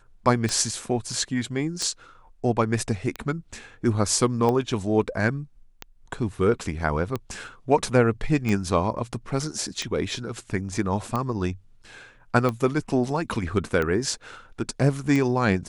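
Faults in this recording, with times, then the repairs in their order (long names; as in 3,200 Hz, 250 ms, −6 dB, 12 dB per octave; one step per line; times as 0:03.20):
scratch tick 45 rpm −14 dBFS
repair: click removal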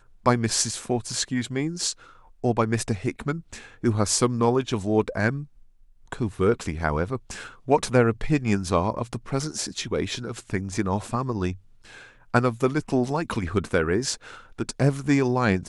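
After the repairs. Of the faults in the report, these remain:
none of them is left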